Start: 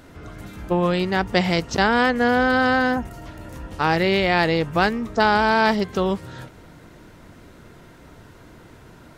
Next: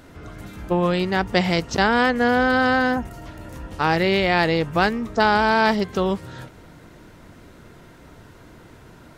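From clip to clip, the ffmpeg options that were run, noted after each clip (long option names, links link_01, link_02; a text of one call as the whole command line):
ffmpeg -i in.wav -af anull out.wav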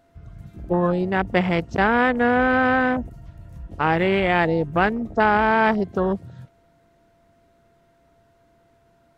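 ffmpeg -i in.wav -af "aeval=exprs='val(0)+0.00708*sin(2*PI*680*n/s)':channel_layout=same,afwtdn=0.0562" out.wav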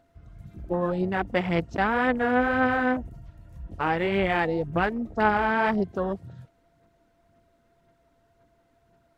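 ffmpeg -i in.wav -af "aphaser=in_gain=1:out_gain=1:delay=4:decay=0.37:speed=1.9:type=sinusoidal,volume=-6dB" out.wav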